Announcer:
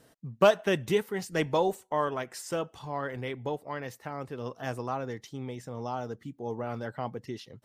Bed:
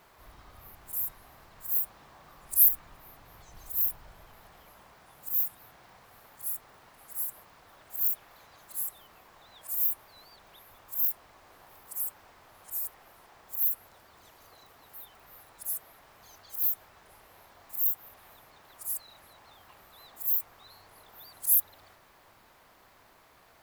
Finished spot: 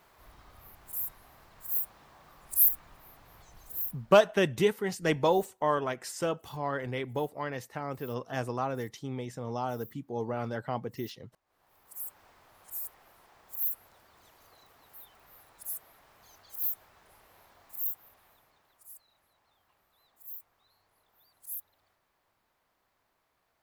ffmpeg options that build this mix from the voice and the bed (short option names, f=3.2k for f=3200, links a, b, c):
-filter_complex "[0:a]adelay=3700,volume=1dB[a];[1:a]volume=19.5dB,afade=t=out:st=3.42:d=0.93:silence=0.0668344,afade=t=in:st=11.45:d=0.8:silence=0.0794328,afade=t=out:st=17.5:d=1.37:silence=0.237137[b];[a][b]amix=inputs=2:normalize=0"